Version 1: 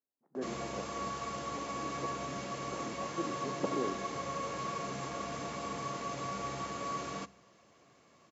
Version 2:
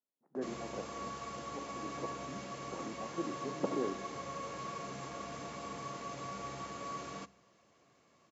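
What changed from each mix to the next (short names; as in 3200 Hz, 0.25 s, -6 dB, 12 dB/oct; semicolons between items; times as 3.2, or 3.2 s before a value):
background -4.5 dB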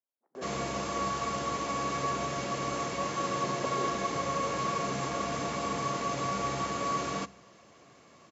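speech: add HPF 450 Hz 12 dB/oct; background +11.0 dB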